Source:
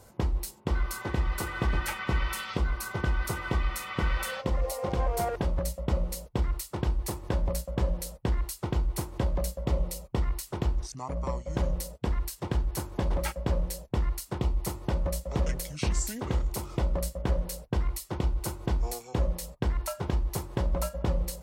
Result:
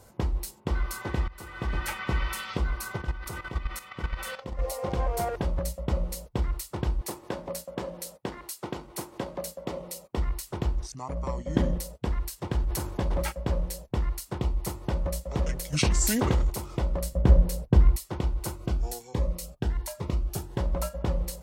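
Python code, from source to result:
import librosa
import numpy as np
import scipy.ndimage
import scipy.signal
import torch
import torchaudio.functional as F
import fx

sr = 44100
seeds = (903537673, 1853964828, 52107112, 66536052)

y = fx.level_steps(x, sr, step_db=12, at=(2.97, 4.59))
y = fx.highpass(y, sr, hz=220.0, slope=12, at=(7.01, 10.17))
y = fx.small_body(y, sr, hz=(250.0, 1800.0, 3200.0), ring_ms=20, db=12, at=(11.38, 11.78))
y = fx.sustainer(y, sr, db_per_s=51.0, at=(12.52, 13.29))
y = fx.env_flatten(y, sr, amount_pct=70, at=(15.72, 16.49), fade=0.02)
y = fx.low_shelf(y, sr, hz=440.0, db=10.5, at=(17.12, 17.96))
y = fx.notch_cascade(y, sr, direction='rising', hz=1.3, at=(18.56, 20.58))
y = fx.edit(y, sr, fx.fade_in_from(start_s=1.28, length_s=0.6, floor_db=-21.0), tone=tone)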